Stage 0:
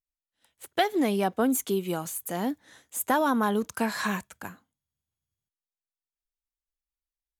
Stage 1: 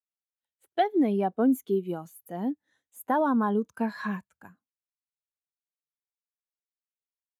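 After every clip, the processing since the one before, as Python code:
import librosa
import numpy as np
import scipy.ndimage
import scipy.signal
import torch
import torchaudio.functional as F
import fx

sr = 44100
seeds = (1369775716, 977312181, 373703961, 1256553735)

y = fx.dynamic_eq(x, sr, hz=7900.0, q=1.3, threshold_db=-49.0, ratio=4.0, max_db=-7)
y = fx.spectral_expand(y, sr, expansion=1.5)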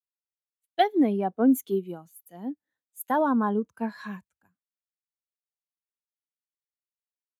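y = fx.band_widen(x, sr, depth_pct=100)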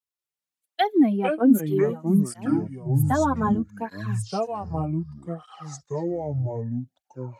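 y = fx.echo_pitch(x, sr, ms=192, semitones=-5, count=3, db_per_echo=-3.0)
y = fx.flanger_cancel(y, sr, hz=0.64, depth_ms=5.9)
y = y * 10.0 ** (4.0 / 20.0)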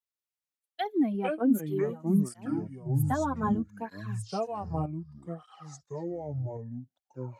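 y = fx.tremolo_random(x, sr, seeds[0], hz=3.5, depth_pct=55)
y = y * 10.0 ** (-3.5 / 20.0)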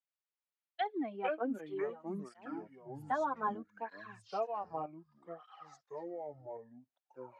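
y = fx.bandpass_edges(x, sr, low_hz=530.0, high_hz=2900.0)
y = y * 10.0 ** (-1.5 / 20.0)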